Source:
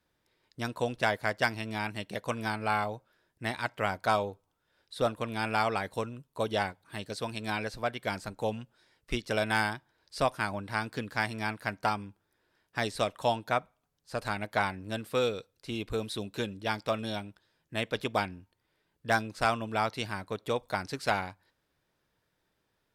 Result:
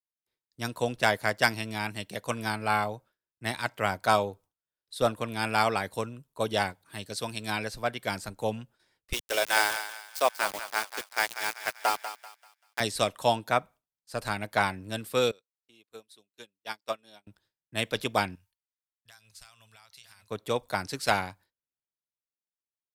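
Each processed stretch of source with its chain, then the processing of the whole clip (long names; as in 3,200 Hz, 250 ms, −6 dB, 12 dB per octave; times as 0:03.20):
0:09.13–0:12.80: high-pass filter 370 Hz 24 dB per octave + centre clipping without the shift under −35 dBFS + feedback echo with a high-pass in the loop 194 ms, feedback 48%, high-pass 580 Hz, level −8 dB
0:15.31–0:17.27: high-pass filter 440 Hz 6 dB per octave + expander for the loud parts 2.5 to 1, over −49 dBFS
0:18.35–0:20.30: guitar amp tone stack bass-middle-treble 10-0-10 + downward compressor, threshold −47 dBFS + single-tap delay 957 ms −7 dB
whole clip: noise gate with hold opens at −56 dBFS; high-shelf EQ 5,600 Hz +9.5 dB; multiband upward and downward expander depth 40%; level +1.5 dB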